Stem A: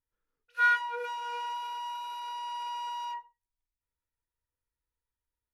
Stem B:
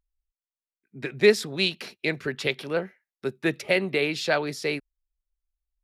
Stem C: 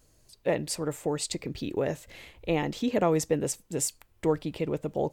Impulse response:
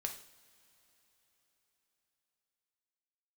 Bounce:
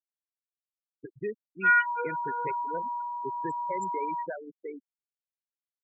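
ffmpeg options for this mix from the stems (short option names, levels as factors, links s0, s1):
-filter_complex "[0:a]lowpass=f=4300:w=0.5412,lowpass=f=4300:w=1.3066,aecho=1:1:6.4:0.84,adelay=1050,volume=1[s0];[1:a]lowpass=2100,alimiter=limit=0.158:level=0:latency=1:release=497,volume=0.376[s1];[2:a]equalizer=f=500:t=o:w=1:g=-12,equalizer=f=1000:t=o:w=1:g=-9,equalizer=f=8000:t=o:w=1:g=9,volume=0.106[s2];[s0][s1][s2]amix=inputs=3:normalize=0,afftfilt=real='re*gte(hypot(re,im),0.0501)':imag='im*gte(hypot(re,im),0.0501)':win_size=1024:overlap=0.75"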